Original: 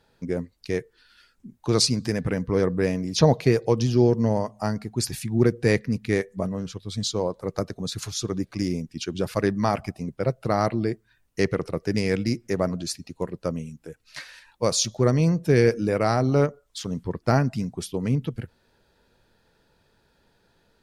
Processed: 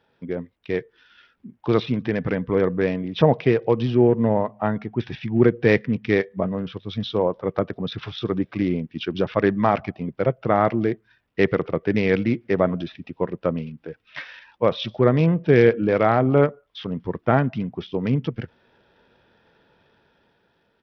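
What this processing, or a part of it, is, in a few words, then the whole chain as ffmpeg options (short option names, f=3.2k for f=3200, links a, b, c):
Bluetooth headset: -af "highpass=f=160:p=1,dynaudnorm=f=150:g=11:m=6.5dB,aresample=8000,aresample=44100" -ar 44100 -c:a sbc -b:a 64k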